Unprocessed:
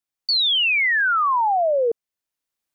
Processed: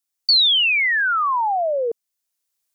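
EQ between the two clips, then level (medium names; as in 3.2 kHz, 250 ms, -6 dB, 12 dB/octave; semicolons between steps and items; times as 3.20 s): tone controls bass +3 dB, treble +9 dB; bass shelf 320 Hz -8.5 dB; 0.0 dB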